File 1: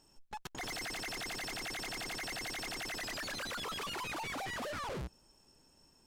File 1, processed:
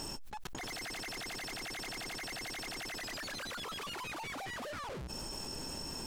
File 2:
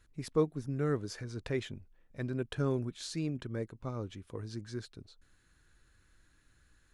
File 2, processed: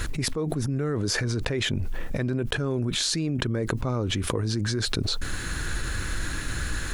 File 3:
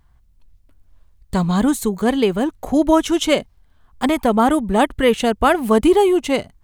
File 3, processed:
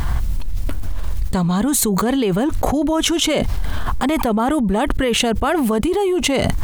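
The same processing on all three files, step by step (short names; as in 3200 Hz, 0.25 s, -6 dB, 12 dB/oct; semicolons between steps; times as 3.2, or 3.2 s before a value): limiter -10.5 dBFS; fast leveller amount 100%; gain -3 dB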